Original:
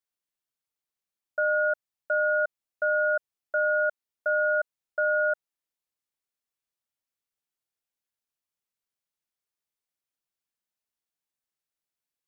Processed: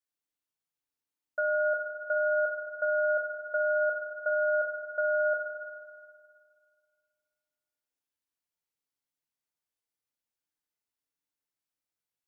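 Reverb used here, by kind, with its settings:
feedback delay network reverb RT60 2.1 s, low-frequency decay 1.1×, high-frequency decay 0.6×, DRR 1 dB
level −4.5 dB

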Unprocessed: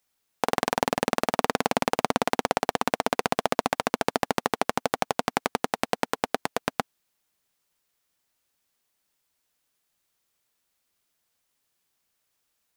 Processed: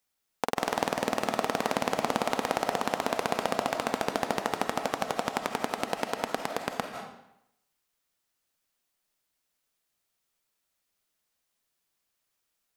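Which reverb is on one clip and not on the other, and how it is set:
comb and all-pass reverb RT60 0.8 s, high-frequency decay 0.9×, pre-delay 120 ms, DRR 4.5 dB
level −4.5 dB

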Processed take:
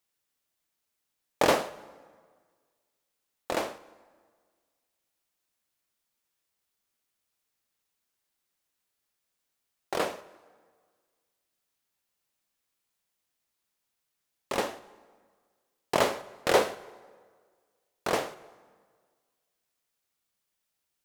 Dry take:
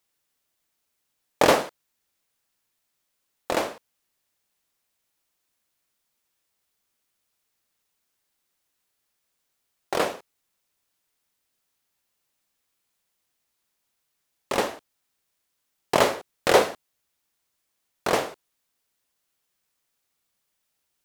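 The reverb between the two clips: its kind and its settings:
dense smooth reverb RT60 1.7 s, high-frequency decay 0.7×, DRR 16.5 dB
level −5 dB

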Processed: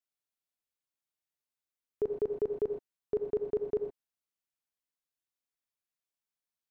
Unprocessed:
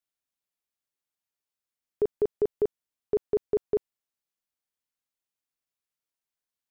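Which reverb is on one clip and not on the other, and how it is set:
reverb whose tail is shaped and stops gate 140 ms rising, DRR 5 dB
level −5.5 dB

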